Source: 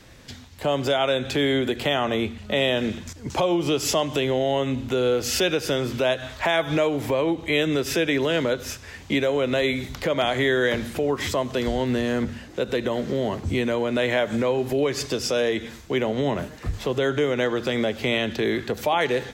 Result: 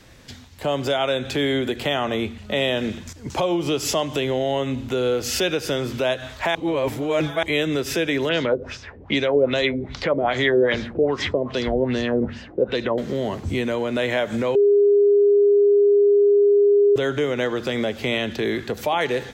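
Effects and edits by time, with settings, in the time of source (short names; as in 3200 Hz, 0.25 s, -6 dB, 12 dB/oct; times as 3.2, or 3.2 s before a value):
6.55–7.43 reverse
8.29–12.98 LFO low-pass sine 2.5 Hz 400–5900 Hz
14.55–16.96 bleep 407 Hz -12 dBFS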